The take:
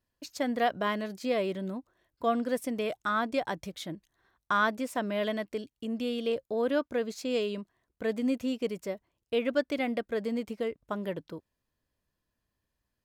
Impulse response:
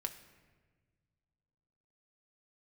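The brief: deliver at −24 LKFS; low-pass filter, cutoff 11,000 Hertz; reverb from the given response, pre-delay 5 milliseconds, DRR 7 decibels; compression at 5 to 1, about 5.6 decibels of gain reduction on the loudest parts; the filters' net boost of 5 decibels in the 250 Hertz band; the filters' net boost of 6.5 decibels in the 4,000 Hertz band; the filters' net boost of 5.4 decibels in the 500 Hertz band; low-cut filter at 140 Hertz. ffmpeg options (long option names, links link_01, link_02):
-filter_complex "[0:a]highpass=140,lowpass=11000,equalizer=frequency=250:width_type=o:gain=5,equalizer=frequency=500:width_type=o:gain=5,equalizer=frequency=4000:width_type=o:gain=8.5,acompressor=threshold=-24dB:ratio=5,asplit=2[link_01][link_02];[1:a]atrim=start_sample=2205,adelay=5[link_03];[link_02][link_03]afir=irnorm=-1:irlink=0,volume=-6.5dB[link_04];[link_01][link_04]amix=inputs=2:normalize=0,volume=6dB"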